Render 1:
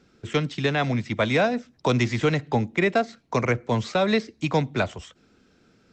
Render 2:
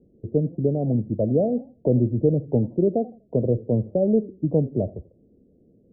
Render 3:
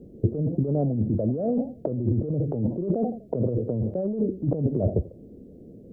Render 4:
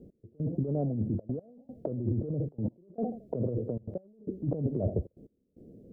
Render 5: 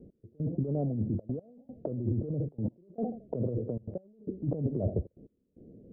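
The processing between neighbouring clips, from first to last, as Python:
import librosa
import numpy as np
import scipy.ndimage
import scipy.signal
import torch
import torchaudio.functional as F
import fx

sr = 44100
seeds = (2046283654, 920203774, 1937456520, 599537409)

y1 = scipy.signal.sosfilt(scipy.signal.butter(8, 600.0, 'lowpass', fs=sr, output='sos'), x)
y1 = fx.echo_warbled(y1, sr, ms=84, feedback_pct=31, rate_hz=2.8, cents=184, wet_db=-21)
y1 = y1 * librosa.db_to_amplitude(3.0)
y2 = fx.over_compress(y1, sr, threshold_db=-29.0, ratio=-1.0)
y2 = y2 * librosa.db_to_amplitude(4.5)
y3 = fx.step_gate(y2, sr, bpm=151, pattern='x...xxxxxxxx.', floor_db=-24.0, edge_ms=4.5)
y3 = y3 * librosa.db_to_amplitude(-6.0)
y4 = fx.air_absorb(y3, sr, metres=400.0)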